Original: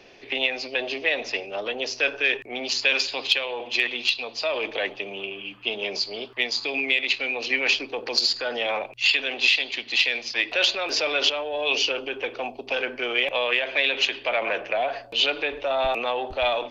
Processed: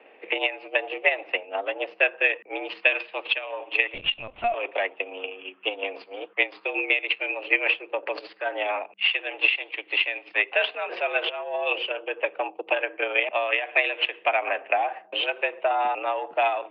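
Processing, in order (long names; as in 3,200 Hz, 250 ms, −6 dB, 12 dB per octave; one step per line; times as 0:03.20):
transient designer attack +7 dB, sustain −6 dB
single-sideband voice off tune +76 Hz 160–2,600 Hz
0:03.94–0:04.54: linear-prediction vocoder at 8 kHz pitch kept
level −1 dB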